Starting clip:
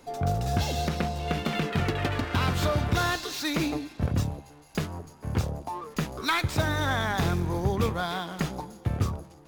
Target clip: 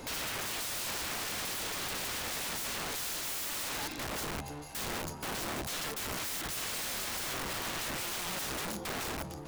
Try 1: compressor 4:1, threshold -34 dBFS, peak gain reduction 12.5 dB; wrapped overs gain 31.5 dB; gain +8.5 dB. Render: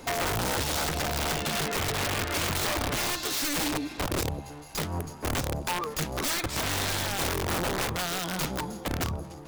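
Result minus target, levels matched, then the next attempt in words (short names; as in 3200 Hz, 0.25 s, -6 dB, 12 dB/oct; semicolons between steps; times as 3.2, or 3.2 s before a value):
wrapped overs: distortion -24 dB
compressor 4:1, threshold -34 dBFS, peak gain reduction 12.5 dB; wrapped overs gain 40.5 dB; gain +8.5 dB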